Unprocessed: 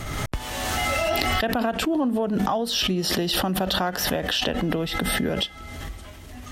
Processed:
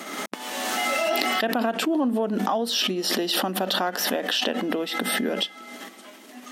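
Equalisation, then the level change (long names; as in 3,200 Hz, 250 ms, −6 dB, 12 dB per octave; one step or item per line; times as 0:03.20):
linear-phase brick-wall high-pass 190 Hz
0.0 dB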